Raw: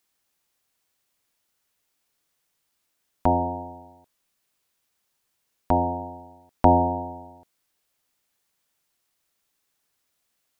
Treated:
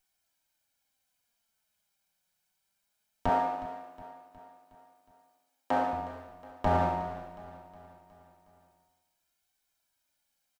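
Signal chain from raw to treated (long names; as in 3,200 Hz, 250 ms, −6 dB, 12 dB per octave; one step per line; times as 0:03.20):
lower of the sound and its delayed copy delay 1.3 ms
0:03.29–0:05.93: high-pass filter 280 Hz 12 dB per octave
brickwall limiter −13.5 dBFS, peak gain reduction 11 dB
flanger 0.21 Hz, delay 2.6 ms, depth 2.9 ms, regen +46%
repeating echo 364 ms, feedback 54%, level −16 dB
level +1.5 dB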